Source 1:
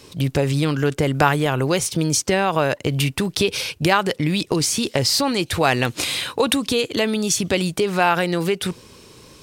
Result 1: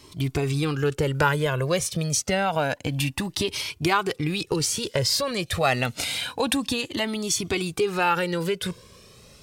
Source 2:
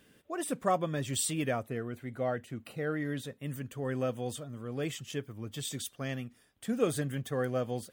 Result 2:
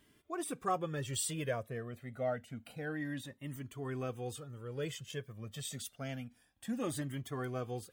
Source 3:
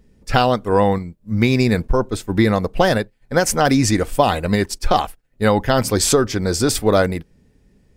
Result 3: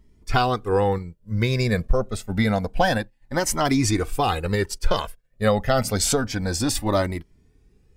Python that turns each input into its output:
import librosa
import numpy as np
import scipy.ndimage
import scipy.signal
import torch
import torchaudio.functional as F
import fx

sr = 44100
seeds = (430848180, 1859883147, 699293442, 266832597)

y = fx.comb_cascade(x, sr, direction='rising', hz=0.28)